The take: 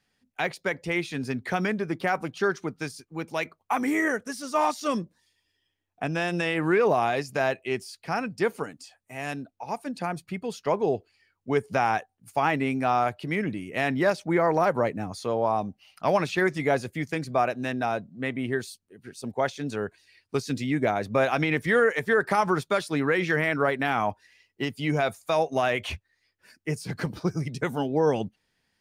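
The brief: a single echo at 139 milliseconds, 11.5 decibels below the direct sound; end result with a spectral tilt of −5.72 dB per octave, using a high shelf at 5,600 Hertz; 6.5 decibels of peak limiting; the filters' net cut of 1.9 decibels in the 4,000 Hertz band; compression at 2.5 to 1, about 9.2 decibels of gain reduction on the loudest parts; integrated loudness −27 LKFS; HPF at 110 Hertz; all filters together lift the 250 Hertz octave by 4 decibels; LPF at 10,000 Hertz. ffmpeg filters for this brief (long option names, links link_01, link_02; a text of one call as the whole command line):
ffmpeg -i in.wav -af "highpass=110,lowpass=10000,equalizer=frequency=250:width_type=o:gain=5.5,equalizer=frequency=4000:width_type=o:gain=-5,highshelf=frequency=5600:gain=6,acompressor=threshold=-31dB:ratio=2.5,alimiter=limit=-22.5dB:level=0:latency=1,aecho=1:1:139:0.266,volume=7dB" out.wav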